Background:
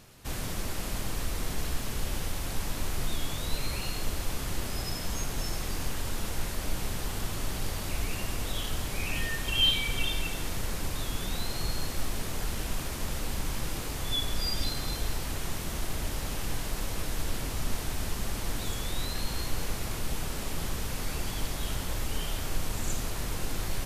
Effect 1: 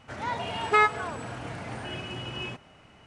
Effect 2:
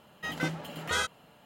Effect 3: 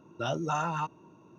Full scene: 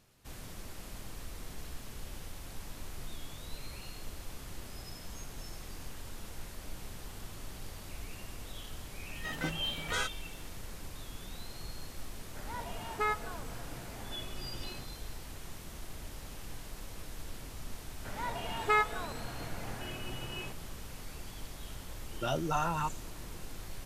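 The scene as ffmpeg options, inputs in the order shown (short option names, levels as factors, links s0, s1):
-filter_complex "[1:a]asplit=2[s0][s1];[0:a]volume=0.251[s2];[s0]equalizer=f=2800:w=1.5:g=-4[s3];[2:a]atrim=end=1.45,asetpts=PTS-STARTPTS,volume=0.596,afade=t=in:d=0.004:c=hsin,afade=t=out:st=1.446:d=0.004:c=hsin,adelay=9010[s4];[s3]atrim=end=3.06,asetpts=PTS-STARTPTS,volume=0.299,afade=t=in:d=0.004:c=hsin,afade=t=out:st=3.056:d=0.004:c=hsin,adelay=12270[s5];[s1]atrim=end=3.06,asetpts=PTS-STARTPTS,volume=0.473,afade=t=in:d=0.004:c=hsin,afade=t=out:st=3.056:d=0.004:c=hsin,adelay=792036S[s6];[3:a]atrim=end=1.38,asetpts=PTS-STARTPTS,volume=0.841,afade=t=in:d=0.004:c=hsin,afade=t=out:st=1.376:d=0.004:c=hsin,adelay=22020[s7];[s2][s4][s5][s6][s7]amix=inputs=5:normalize=0"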